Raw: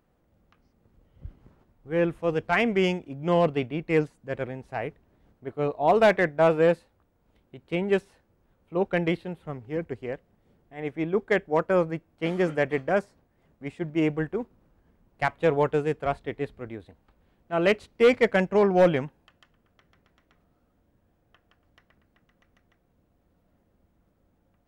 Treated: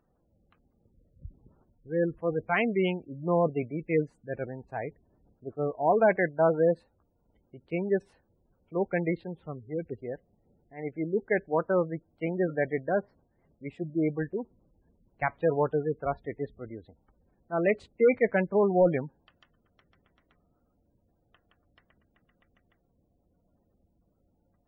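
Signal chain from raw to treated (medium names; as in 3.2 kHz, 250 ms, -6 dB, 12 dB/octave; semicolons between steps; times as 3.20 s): 12.83–14.00 s: low-pass that closes with the level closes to 1.9 kHz, closed at -21 dBFS; spectral gate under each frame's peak -20 dB strong; trim -3 dB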